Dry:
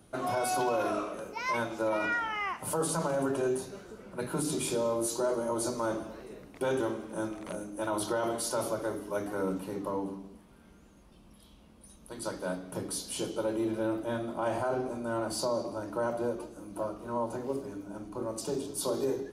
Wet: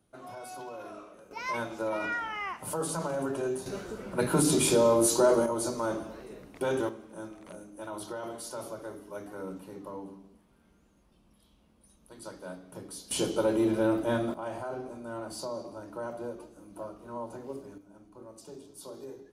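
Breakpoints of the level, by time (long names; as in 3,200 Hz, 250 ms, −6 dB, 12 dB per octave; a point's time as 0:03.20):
−13 dB
from 0:01.31 −2 dB
from 0:03.66 +7.5 dB
from 0:05.46 +0.5 dB
from 0:06.89 −7.5 dB
from 0:13.11 +5 dB
from 0:14.34 −6 dB
from 0:17.78 −13 dB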